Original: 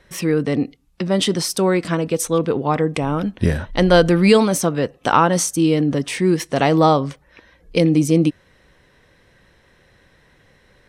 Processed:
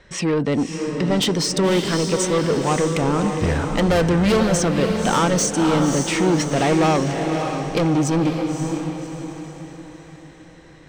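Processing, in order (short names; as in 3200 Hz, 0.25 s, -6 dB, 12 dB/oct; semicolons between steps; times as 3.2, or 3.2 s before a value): steep low-pass 8400 Hz 48 dB/oct; soft clip -18 dBFS, distortion -8 dB; diffused feedback echo 0.569 s, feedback 45%, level -5 dB; gain +3 dB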